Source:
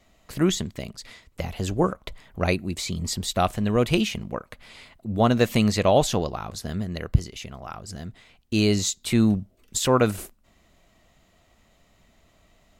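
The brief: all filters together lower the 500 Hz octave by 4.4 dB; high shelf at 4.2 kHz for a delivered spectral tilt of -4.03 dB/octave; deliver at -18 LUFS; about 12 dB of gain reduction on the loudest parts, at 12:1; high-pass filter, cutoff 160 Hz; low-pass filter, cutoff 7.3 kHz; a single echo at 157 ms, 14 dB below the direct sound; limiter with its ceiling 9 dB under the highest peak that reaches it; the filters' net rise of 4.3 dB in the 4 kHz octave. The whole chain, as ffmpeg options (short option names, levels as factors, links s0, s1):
-af "highpass=160,lowpass=7300,equalizer=f=500:t=o:g=-5.5,equalizer=f=4000:t=o:g=9,highshelf=f=4200:g=-6.5,acompressor=threshold=0.0355:ratio=12,alimiter=limit=0.0668:level=0:latency=1,aecho=1:1:157:0.2,volume=8.41"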